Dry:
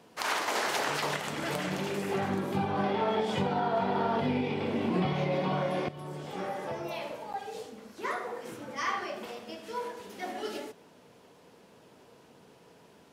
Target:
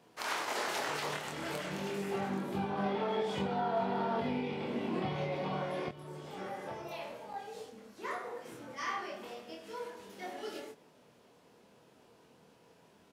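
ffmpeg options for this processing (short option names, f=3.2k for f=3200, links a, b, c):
-filter_complex "[0:a]asplit=2[a][b];[b]adelay=25,volume=-3dB[c];[a][c]amix=inputs=2:normalize=0,volume=-7dB"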